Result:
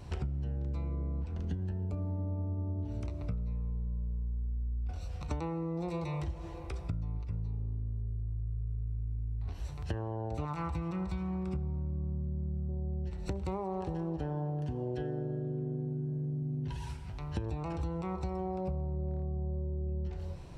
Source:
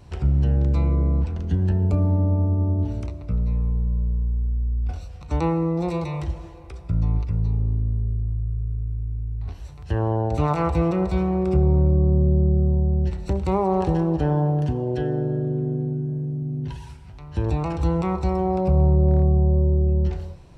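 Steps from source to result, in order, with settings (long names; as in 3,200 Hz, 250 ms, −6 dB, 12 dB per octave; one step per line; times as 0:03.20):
0:10.45–0:12.69: flat-topped bell 510 Hz −9 dB 1.2 octaves
downward compressor 12 to 1, threshold −32 dBFS, peak gain reduction 19 dB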